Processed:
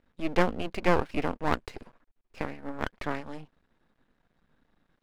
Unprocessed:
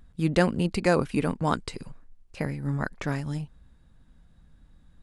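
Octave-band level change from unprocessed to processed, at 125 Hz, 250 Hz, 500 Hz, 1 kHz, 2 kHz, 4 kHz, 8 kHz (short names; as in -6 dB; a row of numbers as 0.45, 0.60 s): -9.5, -5.5, -2.5, 0.0, -1.5, -3.0, -9.0 dB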